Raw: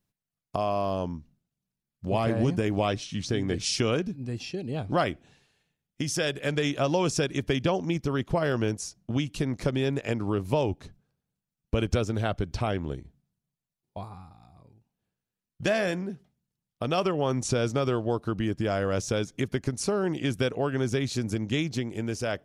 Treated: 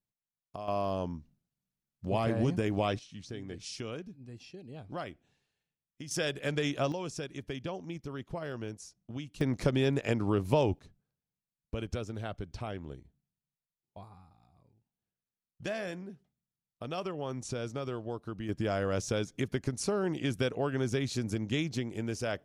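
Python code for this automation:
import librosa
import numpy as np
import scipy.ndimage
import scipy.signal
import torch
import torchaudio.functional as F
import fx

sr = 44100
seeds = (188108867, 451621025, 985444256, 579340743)

y = fx.gain(x, sr, db=fx.steps((0.0, -13.0), (0.68, -4.0), (2.99, -14.0), (6.11, -4.5), (6.92, -12.5), (9.41, -1.0), (10.79, -10.5), (18.49, -4.0)))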